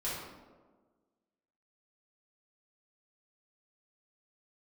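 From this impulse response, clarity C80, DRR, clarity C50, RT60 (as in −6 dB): 2.5 dB, −10.0 dB, −0.5 dB, 1.4 s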